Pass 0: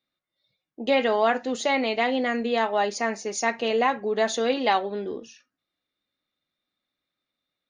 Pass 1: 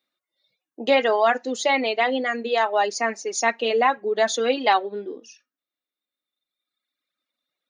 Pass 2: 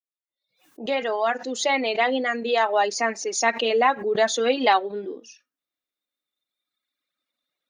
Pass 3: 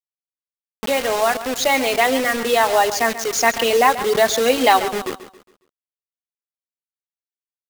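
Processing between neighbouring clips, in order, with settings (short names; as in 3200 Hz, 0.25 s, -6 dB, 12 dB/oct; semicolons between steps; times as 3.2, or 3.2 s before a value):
HPF 260 Hz 12 dB/oct; reverb removal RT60 1.9 s; gain +4 dB
opening faded in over 2.08 s; backwards sustainer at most 140 dB/s
bit-crush 5-bit; feedback echo 0.137 s, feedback 38%, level -13.5 dB; gain +4.5 dB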